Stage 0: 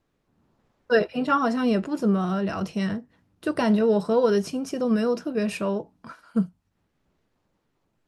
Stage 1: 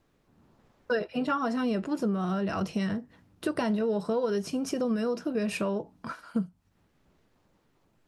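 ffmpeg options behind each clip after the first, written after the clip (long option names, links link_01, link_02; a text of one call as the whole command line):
ffmpeg -i in.wav -af "acompressor=threshold=-32dB:ratio=4,volume=4.5dB" out.wav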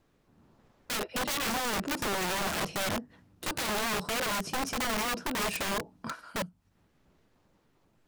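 ffmpeg -i in.wav -af "aeval=exprs='(mod(21.1*val(0)+1,2)-1)/21.1':channel_layout=same" out.wav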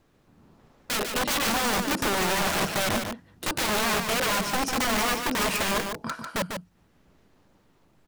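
ffmpeg -i in.wav -af "aecho=1:1:147:0.501,volume=5dB" out.wav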